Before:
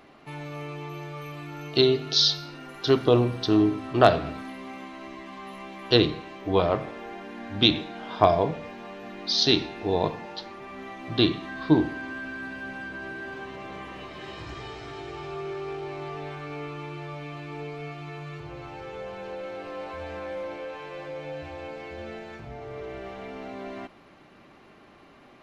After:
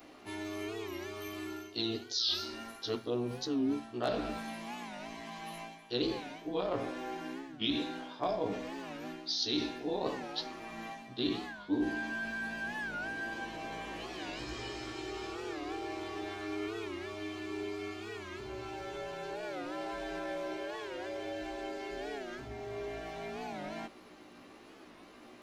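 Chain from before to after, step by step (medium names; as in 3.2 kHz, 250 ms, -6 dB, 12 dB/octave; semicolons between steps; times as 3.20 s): short-time spectra conjugated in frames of 33 ms; tone controls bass +7 dB, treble +10 dB; reverse; compression 6:1, threshold -31 dBFS, peak gain reduction 18 dB; reverse; resonant low shelf 210 Hz -9 dB, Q 1.5; warped record 45 rpm, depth 160 cents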